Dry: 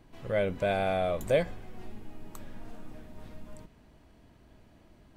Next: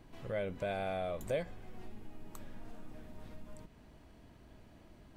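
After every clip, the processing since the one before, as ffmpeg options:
ffmpeg -i in.wav -af "acompressor=threshold=-49dB:ratio=1.5" out.wav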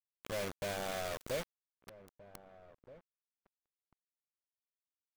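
ffmpeg -i in.wav -filter_complex "[0:a]acrusher=bits=5:mix=0:aa=0.000001,asplit=2[link_01][link_02];[link_02]adelay=1574,volume=-17dB,highshelf=frequency=4000:gain=-35.4[link_03];[link_01][link_03]amix=inputs=2:normalize=0,volume=-3.5dB" out.wav

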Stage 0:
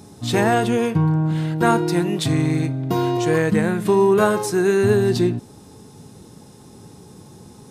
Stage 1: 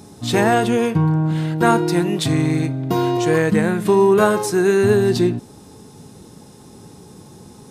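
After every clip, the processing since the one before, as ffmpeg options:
ffmpeg -i in.wav -af "equalizer=frequency=110:width=1.8:gain=-2.5,volume=2dB" out.wav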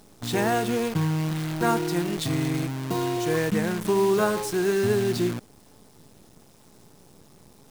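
ffmpeg -i in.wav -af "acrusher=bits=5:dc=4:mix=0:aa=0.000001,volume=-8dB" out.wav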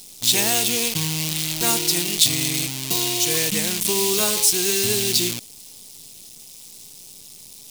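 ffmpeg -i in.wav -af "aexciter=amount=10.2:drive=3.2:freq=2300,volume=-3.5dB" out.wav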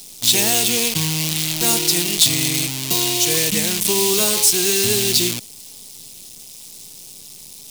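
ffmpeg -i in.wav -filter_complex "[0:a]acrossover=split=130|750|2000[link_01][link_02][link_03][link_04];[link_03]alimiter=level_in=6.5dB:limit=-24dB:level=0:latency=1,volume=-6.5dB[link_05];[link_01][link_02][link_05][link_04]amix=inputs=4:normalize=0,asoftclip=type=tanh:threshold=-5dB,volume=3.5dB" out.wav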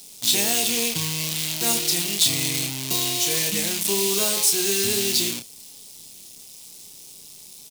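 ffmpeg -i in.wav -filter_complex "[0:a]lowshelf=frequency=62:gain=-11.5,asplit=2[link_01][link_02];[link_02]adelay=30,volume=-6dB[link_03];[link_01][link_03]amix=inputs=2:normalize=0,volume=-5.5dB" out.wav

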